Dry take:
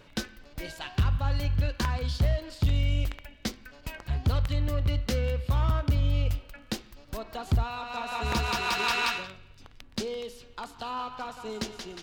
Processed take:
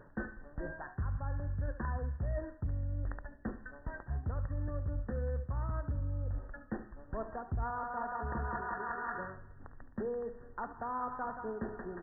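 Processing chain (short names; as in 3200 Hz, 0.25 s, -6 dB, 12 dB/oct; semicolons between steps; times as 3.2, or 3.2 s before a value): reverse; compressor 6:1, threshold -33 dBFS, peak gain reduction 12.5 dB; reverse; brick-wall FIR low-pass 1900 Hz; echo 72 ms -13.5 dB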